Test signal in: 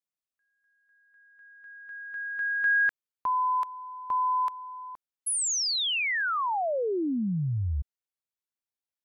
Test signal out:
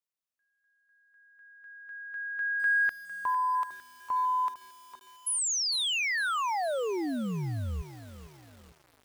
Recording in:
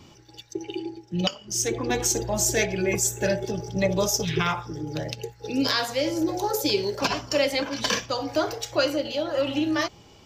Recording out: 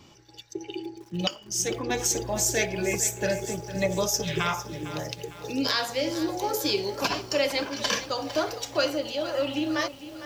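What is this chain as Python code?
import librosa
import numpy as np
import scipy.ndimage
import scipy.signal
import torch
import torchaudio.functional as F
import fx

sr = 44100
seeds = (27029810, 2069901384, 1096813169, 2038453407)

y = fx.low_shelf(x, sr, hz=340.0, db=-3.5)
y = fx.echo_crushed(y, sr, ms=454, feedback_pct=55, bits=7, wet_db=-13)
y = y * librosa.db_to_amplitude(-1.5)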